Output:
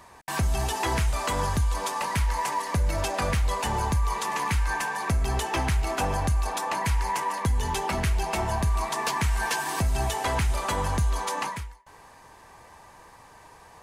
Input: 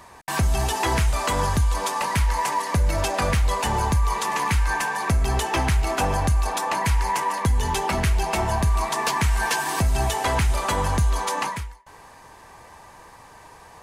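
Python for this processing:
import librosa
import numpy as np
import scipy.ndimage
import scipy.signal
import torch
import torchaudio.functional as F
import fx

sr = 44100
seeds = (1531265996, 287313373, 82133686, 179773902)

y = fx.dmg_noise_colour(x, sr, seeds[0], colour='pink', level_db=-60.0, at=(1.18, 2.75), fade=0.02)
y = F.gain(torch.from_numpy(y), -4.0).numpy()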